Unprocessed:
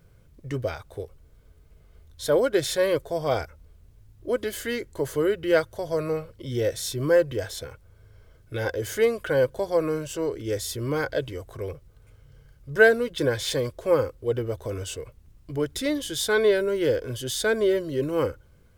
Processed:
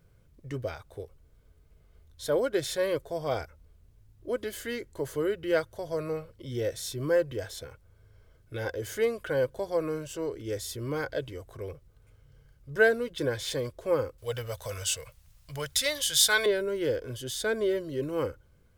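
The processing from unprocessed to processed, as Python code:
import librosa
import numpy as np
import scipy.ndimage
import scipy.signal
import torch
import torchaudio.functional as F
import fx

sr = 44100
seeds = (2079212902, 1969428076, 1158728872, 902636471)

y = fx.curve_eq(x, sr, hz=(150.0, 350.0, 520.0, 4900.0), db=(0, -17, 2, 13), at=(14.18, 16.46))
y = F.gain(torch.from_numpy(y), -5.5).numpy()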